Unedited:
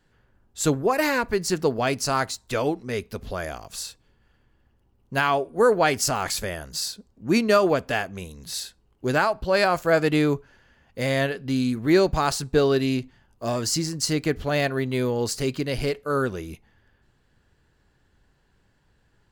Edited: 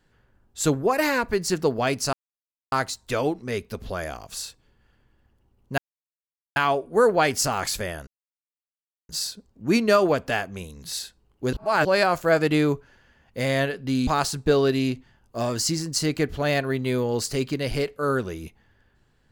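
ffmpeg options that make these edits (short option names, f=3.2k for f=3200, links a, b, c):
-filter_complex "[0:a]asplit=7[a][b][c][d][e][f][g];[a]atrim=end=2.13,asetpts=PTS-STARTPTS,afade=t=out:st=2.126:d=0.004:c=hsin,apad=pad_dur=0.59[h];[b]atrim=start=2.13:end=5.19,asetpts=PTS-STARTPTS,afade=t=in:d=0.004:c=hsin,afade=t=out:st=3.056:d=0.004:c=hsin,apad=pad_dur=0.78[i];[c]atrim=start=5.19:end=6.7,asetpts=PTS-STARTPTS,afade=t=in:d=0.004:c=hsin,afade=t=out:st=1.506:d=0.004:c=hsin,apad=pad_dur=1.02[j];[d]atrim=start=6.7:end=9.142,asetpts=PTS-STARTPTS,afade=t=in:d=0.004:c=hsin[k];[e]atrim=start=9.138:end=9.462,asetpts=PTS-STARTPTS,areverse[l];[f]atrim=start=9.458:end=11.682[m];[g]atrim=start=12.138[n];[h][i][j][k]concat=n=4:v=0:a=1[o];[o][l]acrossfade=d=0.004:c1=hsin:c2=hsin[p];[p][m]acrossfade=d=0.004:c1=hsin:c2=hsin[q];[q][n]acrossfade=d=0.004:c1=hsin:c2=hsin"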